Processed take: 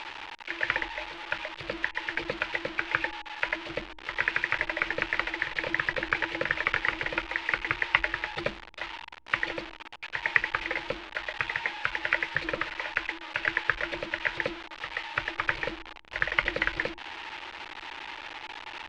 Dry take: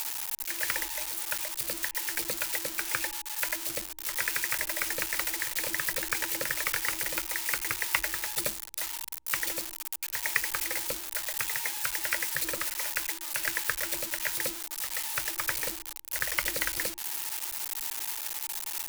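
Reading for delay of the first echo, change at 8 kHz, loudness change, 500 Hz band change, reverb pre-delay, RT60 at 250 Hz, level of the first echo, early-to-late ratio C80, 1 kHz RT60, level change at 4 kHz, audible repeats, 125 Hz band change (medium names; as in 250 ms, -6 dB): no echo, under -25 dB, -0.5 dB, +5.5 dB, no reverb, no reverb, no echo, no reverb, no reverb, -1.5 dB, no echo, +5.5 dB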